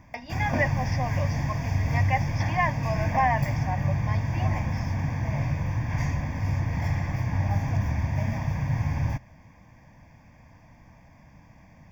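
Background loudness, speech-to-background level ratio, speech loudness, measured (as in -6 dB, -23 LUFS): -28.0 LUFS, -3.0 dB, -31.0 LUFS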